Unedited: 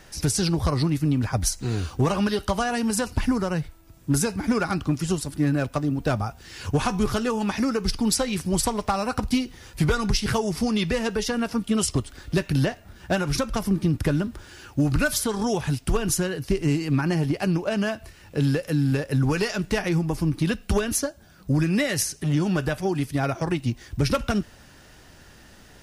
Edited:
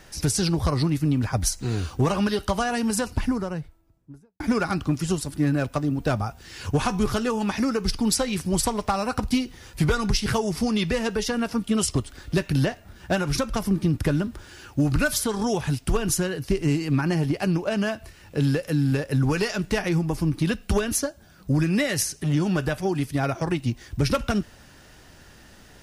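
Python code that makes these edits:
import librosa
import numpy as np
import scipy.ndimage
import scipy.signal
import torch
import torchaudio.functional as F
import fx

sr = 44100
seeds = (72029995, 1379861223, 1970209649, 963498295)

y = fx.studio_fade_out(x, sr, start_s=2.89, length_s=1.51)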